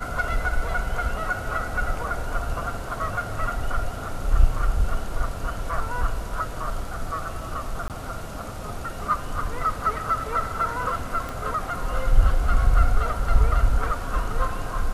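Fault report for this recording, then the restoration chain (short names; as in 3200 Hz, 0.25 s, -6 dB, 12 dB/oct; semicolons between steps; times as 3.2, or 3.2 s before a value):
7.88–7.9 gap 18 ms
11.29 pop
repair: de-click; interpolate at 7.88, 18 ms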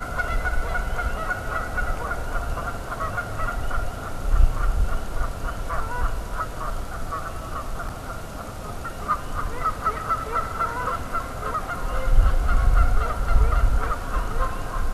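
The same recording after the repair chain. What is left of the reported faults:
11.29 pop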